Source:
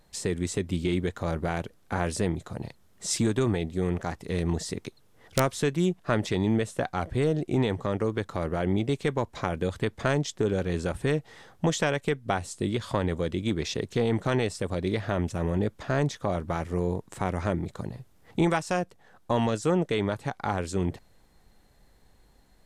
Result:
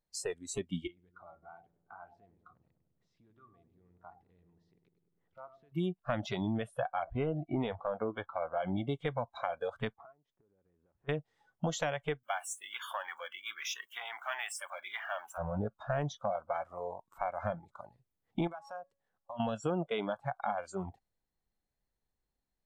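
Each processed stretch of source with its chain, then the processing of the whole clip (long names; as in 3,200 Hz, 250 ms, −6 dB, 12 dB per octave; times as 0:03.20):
0:00.87–0:05.72: downward compressor 2.5 to 1, threshold −43 dBFS + high-frequency loss of the air 280 metres + feedback echo with a low-pass in the loop 100 ms, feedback 75%, low-pass 1,200 Hz, level −7 dB
0:06.82–0:08.69: low-pass filter 3,800 Hz 24 dB per octave + double-tracking delay 12 ms −12.5 dB
0:09.94–0:11.09: low-pass filter 1,100 Hz + low-shelf EQ 320 Hz −6.5 dB + downward compressor 16 to 1, threshold −41 dBFS
0:12.23–0:15.38: high-pass filter 1,300 Hz + parametric band 4,300 Hz −11 dB 0.6 octaves + power curve on the samples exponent 0.7
0:18.47–0:19.40: hum removal 277.5 Hz, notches 7 + downward compressor 8 to 1, threshold −34 dBFS
whole clip: noise reduction from a noise print of the clip's start 24 dB; dynamic equaliser 700 Hz, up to +7 dB, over −46 dBFS, Q 4.7; downward compressor 3 to 1, threshold −27 dBFS; level −3.5 dB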